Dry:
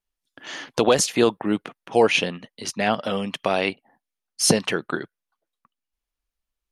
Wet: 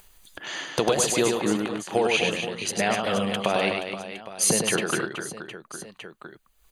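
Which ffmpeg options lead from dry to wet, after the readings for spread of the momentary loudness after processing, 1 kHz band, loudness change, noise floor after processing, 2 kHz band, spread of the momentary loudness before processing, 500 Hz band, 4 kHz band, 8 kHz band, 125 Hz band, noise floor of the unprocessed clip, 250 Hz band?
17 LU, -1.5 dB, -2.0 dB, -62 dBFS, -0.5 dB, 14 LU, -2.5 dB, -1.0 dB, +1.5 dB, -1.5 dB, under -85 dBFS, -2.5 dB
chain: -af "equalizer=f=260:t=o:w=0.21:g=-9,acompressor=threshold=0.112:ratio=6,aecho=1:1:100|250|475|812.5|1319:0.631|0.398|0.251|0.158|0.1,acompressor=mode=upward:threshold=0.0224:ratio=2.5,asuperstop=centerf=5400:order=8:qfactor=7.7,highshelf=f=8700:g=5.5"

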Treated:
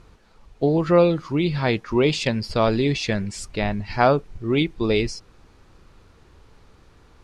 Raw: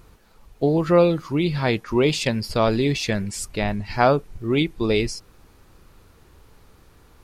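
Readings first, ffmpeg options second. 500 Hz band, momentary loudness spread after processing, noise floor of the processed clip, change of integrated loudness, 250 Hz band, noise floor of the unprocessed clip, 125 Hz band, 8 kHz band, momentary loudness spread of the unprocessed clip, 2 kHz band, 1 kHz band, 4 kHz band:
0.0 dB, 9 LU, -54 dBFS, 0.0 dB, 0.0 dB, -54 dBFS, 0.0 dB, -4.0 dB, 8 LU, 0.0 dB, 0.0 dB, -0.5 dB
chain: -af "lowpass=6600"

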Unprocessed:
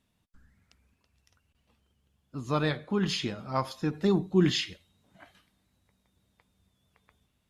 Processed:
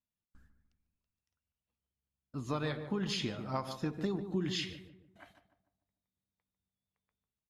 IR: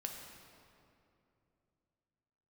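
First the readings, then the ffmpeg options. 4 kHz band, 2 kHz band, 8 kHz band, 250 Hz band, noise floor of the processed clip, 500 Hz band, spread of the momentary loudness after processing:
-6.0 dB, -7.0 dB, -6.0 dB, -8.0 dB, under -85 dBFS, -8.5 dB, 9 LU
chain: -filter_complex "[0:a]agate=range=0.0891:threshold=0.00126:ratio=16:detection=peak,acompressor=threshold=0.0398:ratio=12,asplit=2[s0][s1];[s1]adelay=148,lowpass=f=1100:p=1,volume=0.398,asplit=2[s2][s3];[s3]adelay=148,lowpass=f=1100:p=1,volume=0.45,asplit=2[s4][s5];[s5]adelay=148,lowpass=f=1100:p=1,volume=0.45,asplit=2[s6][s7];[s7]adelay=148,lowpass=f=1100:p=1,volume=0.45,asplit=2[s8][s9];[s9]adelay=148,lowpass=f=1100:p=1,volume=0.45[s10];[s0][s2][s4][s6][s8][s10]amix=inputs=6:normalize=0,volume=0.75"

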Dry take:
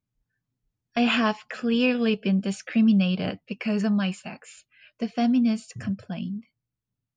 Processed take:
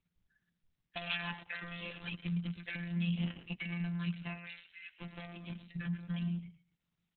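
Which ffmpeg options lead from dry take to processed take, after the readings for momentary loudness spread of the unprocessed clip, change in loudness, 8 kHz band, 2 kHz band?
12 LU, -14.5 dB, no reading, -10.0 dB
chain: -af "flanger=delay=5.3:depth=1.9:regen=-78:speed=0.78:shape=sinusoidal,acompressor=threshold=0.00794:ratio=4,aresample=11025,aresample=44100,asoftclip=type=hard:threshold=0.0126,equalizer=f=480:t=o:w=1.9:g=-14.5,aecho=1:1:113|226|339:0.299|0.0627|0.0132,afftfilt=real='hypot(re,im)*cos(PI*b)':imag='0':win_size=1024:overlap=0.75,volume=5.31" -ar 48000 -c:a libopus -b:a 6k

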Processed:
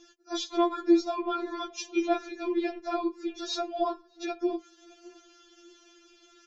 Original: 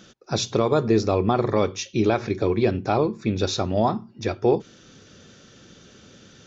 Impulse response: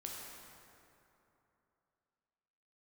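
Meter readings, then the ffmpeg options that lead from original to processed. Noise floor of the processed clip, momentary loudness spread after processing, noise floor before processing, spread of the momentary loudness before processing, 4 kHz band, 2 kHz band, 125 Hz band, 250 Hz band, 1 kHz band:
-61 dBFS, 12 LU, -52 dBFS, 5 LU, -5.5 dB, -7.0 dB, under -40 dB, -4.5 dB, -6.0 dB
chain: -filter_complex "[0:a]asplit=2[s0][s1];[s1]adelay=616,lowpass=f=1100:p=1,volume=0.0841,asplit=2[s2][s3];[s3]adelay=616,lowpass=f=1100:p=1,volume=0.27[s4];[s0][s2][s4]amix=inputs=3:normalize=0,afftfilt=real='re*4*eq(mod(b,16),0)':imag='im*4*eq(mod(b,16),0)':win_size=2048:overlap=0.75,volume=0.631"

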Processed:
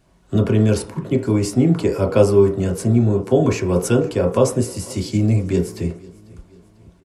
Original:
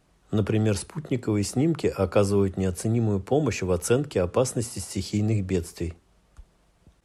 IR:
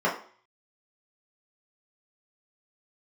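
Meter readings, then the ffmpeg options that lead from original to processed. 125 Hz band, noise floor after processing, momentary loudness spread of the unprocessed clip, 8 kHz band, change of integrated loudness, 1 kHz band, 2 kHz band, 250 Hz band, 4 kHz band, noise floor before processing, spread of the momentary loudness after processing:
+7.5 dB, -54 dBFS, 7 LU, +3.0 dB, +7.5 dB, +5.0 dB, +4.0 dB, +7.5 dB, +3.5 dB, -64 dBFS, 8 LU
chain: -filter_complex "[0:a]aecho=1:1:495|990|1485:0.0708|0.0326|0.015,asplit=2[s0][s1];[1:a]atrim=start_sample=2205,lowshelf=f=280:g=8.5[s2];[s1][s2]afir=irnorm=-1:irlink=0,volume=0.133[s3];[s0][s3]amix=inputs=2:normalize=0,volume=1.58"

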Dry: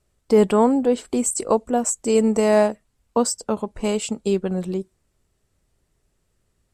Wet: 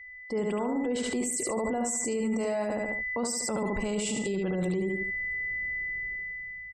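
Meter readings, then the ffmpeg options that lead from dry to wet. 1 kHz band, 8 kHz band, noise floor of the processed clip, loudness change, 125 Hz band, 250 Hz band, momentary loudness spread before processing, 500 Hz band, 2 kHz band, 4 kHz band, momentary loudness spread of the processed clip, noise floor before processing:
-11.0 dB, -5.5 dB, -43 dBFS, -9.5 dB, -5.5 dB, -8.5 dB, 9 LU, -11.0 dB, +6.5 dB, -5.0 dB, 3 LU, -70 dBFS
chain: -af "areverse,acompressor=threshold=0.0501:ratio=8,areverse,aecho=1:1:72|144|216|288:0.631|0.221|0.0773|0.0271,aeval=exprs='val(0)+0.00562*sin(2*PI*2000*n/s)':c=same,dynaudnorm=f=320:g=7:m=5.01,alimiter=level_in=1.06:limit=0.0631:level=0:latency=1:release=50,volume=0.944,afftfilt=real='re*gte(hypot(re,im),0.00251)':imag='im*gte(hypot(re,im),0.00251)':win_size=1024:overlap=0.75,volume=1.26"

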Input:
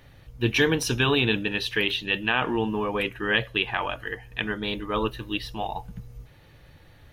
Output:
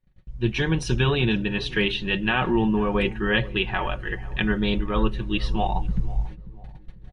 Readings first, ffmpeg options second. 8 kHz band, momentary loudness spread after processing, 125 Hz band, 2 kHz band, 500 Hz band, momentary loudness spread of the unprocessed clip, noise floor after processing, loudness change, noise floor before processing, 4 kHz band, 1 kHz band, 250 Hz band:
no reading, 8 LU, +6.0 dB, -0.5 dB, +1.0 dB, 11 LU, -47 dBFS, +1.0 dB, -53 dBFS, -1.5 dB, +1.5 dB, +4.5 dB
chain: -filter_complex "[0:a]aemphasis=mode=reproduction:type=bsi,agate=range=0.0501:threshold=0.0158:ratio=16:detection=peak,highshelf=f=4700:g=5.5,aecho=1:1:5.4:0.57,dynaudnorm=f=170:g=3:m=4.73,asplit=2[s0][s1];[s1]adelay=493,lowpass=f=960:p=1,volume=0.141,asplit=2[s2][s3];[s3]adelay=493,lowpass=f=960:p=1,volume=0.42,asplit=2[s4][s5];[s5]adelay=493,lowpass=f=960:p=1,volume=0.42,asplit=2[s6][s7];[s7]adelay=493,lowpass=f=960:p=1,volume=0.42[s8];[s2][s4][s6][s8]amix=inputs=4:normalize=0[s9];[s0][s9]amix=inputs=2:normalize=0,aresample=22050,aresample=44100,volume=0.398"

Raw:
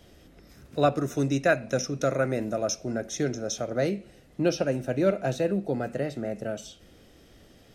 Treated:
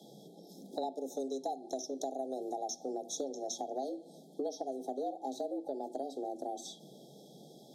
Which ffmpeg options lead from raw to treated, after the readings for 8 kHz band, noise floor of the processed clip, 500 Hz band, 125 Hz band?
-7.5 dB, -57 dBFS, -11.0 dB, under -30 dB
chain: -af "afreqshift=130,afftfilt=real='re*(1-between(b*sr/4096,870,3200))':imag='im*(1-between(b*sr/4096,870,3200))':win_size=4096:overlap=0.75,acompressor=threshold=0.0178:ratio=6,bandreject=f=60:t=h:w=6,bandreject=f=120:t=h:w=6,bandreject=f=180:t=h:w=6,bandreject=f=240:t=h:w=6"

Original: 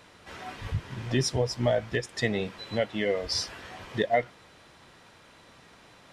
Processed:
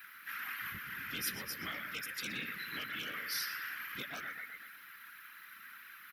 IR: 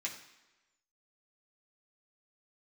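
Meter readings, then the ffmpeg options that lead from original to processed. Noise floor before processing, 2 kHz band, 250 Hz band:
-55 dBFS, -2.0 dB, -17.5 dB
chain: -filter_complex "[0:a]firequalizer=gain_entry='entry(130,0);entry(200,5);entry(350,-9);entry(630,-23);entry(1400,11);entry(3400,-10);entry(7900,-24);entry(13000,12)':delay=0.05:min_phase=1,asplit=2[s0][s1];[s1]adelay=122,lowpass=f=3700:p=1,volume=0.355,asplit=2[s2][s3];[s3]adelay=122,lowpass=f=3700:p=1,volume=0.54,asplit=2[s4][s5];[s5]adelay=122,lowpass=f=3700:p=1,volume=0.54,asplit=2[s6][s7];[s7]adelay=122,lowpass=f=3700:p=1,volume=0.54,asplit=2[s8][s9];[s9]adelay=122,lowpass=f=3700:p=1,volume=0.54,asplit=2[s10][s11];[s11]adelay=122,lowpass=f=3700:p=1,volume=0.54[s12];[s0][s2][s4][s6][s8][s10][s12]amix=inputs=7:normalize=0,afftfilt=real='hypot(re,im)*cos(2*PI*random(0))':imag='hypot(re,im)*sin(2*PI*random(1))':win_size=512:overlap=0.75,asplit=2[s13][s14];[s14]asoftclip=type=tanh:threshold=0.0355,volume=0.355[s15];[s13][s15]amix=inputs=2:normalize=0,aderivative,afftfilt=real='re*lt(hypot(re,im),0.0112)':imag='im*lt(hypot(re,im),0.0112)':win_size=1024:overlap=0.75,volume=5.31"

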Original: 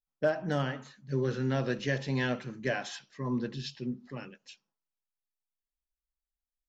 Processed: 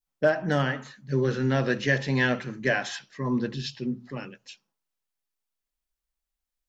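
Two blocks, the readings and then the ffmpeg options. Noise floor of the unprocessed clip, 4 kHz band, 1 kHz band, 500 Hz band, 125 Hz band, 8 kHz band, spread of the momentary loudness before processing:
under -85 dBFS, +6.0 dB, +6.0 dB, +5.5 dB, +5.0 dB, no reading, 12 LU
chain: -af "bandreject=f=60:t=h:w=6,bandreject=f=120:t=h:w=6,adynamicequalizer=threshold=0.00562:dfrequency=1800:dqfactor=2.4:tfrequency=1800:tqfactor=2.4:attack=5:release=100:ratio=0.375:range=2.5:mode=boostabove:tftype=bell,volume=1.88"

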